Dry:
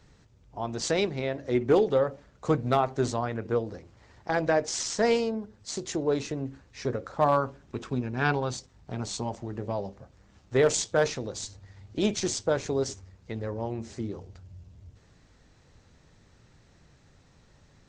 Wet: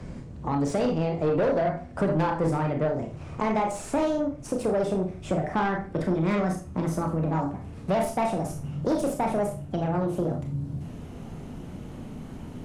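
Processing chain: gliding tape speed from 120% -> 163%; in parallel at +1.5 dB: compression, threshold -38 dBFS, peak gain reduction 19 dB; on the sum: bass shelf 350 Hz +9 dB; Schroeder reverb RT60 0.31 s, combs from 25 ms, DRR 3 dB; saturation -18.5 dBFS, distortion -10 dB; treble shelf 2.1 kHz -11.5 dB; de-hum 56.12 Hz, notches 3; three bands compressed up and down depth 40%

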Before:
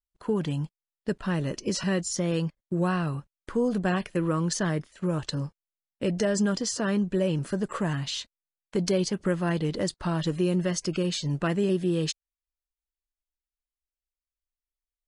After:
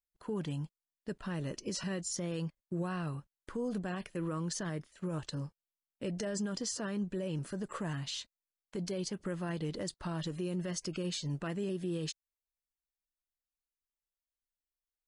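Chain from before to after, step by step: peak limiter -20.5 dBFS, peak gain reduction 6.5 dB; treble shelf 8.2 kHz +5 dB; trim -8 dB

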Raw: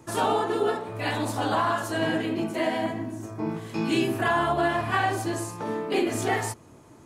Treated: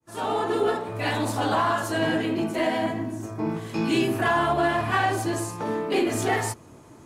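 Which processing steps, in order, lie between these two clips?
fade-in on the opening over 0.52 s; in parallel at -8.5 dB: overload inside the chain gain 27 dB; on the sum: AAC 128 kbps 48 kHz

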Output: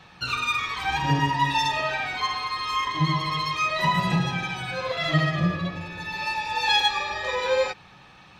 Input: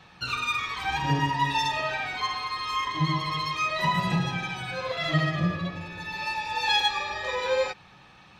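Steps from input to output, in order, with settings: de-hum 105.7 Hz, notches 4; trim +2.5 dB

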